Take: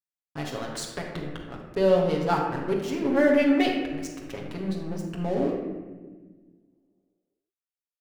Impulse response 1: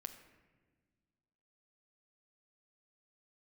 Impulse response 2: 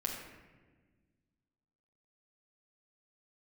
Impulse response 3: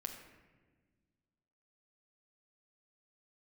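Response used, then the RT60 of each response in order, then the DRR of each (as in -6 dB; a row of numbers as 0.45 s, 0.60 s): 2; 1.5 s, 1.4 s, 1.4 s; 6.5 dB, -2.0 dB, 2.5 dB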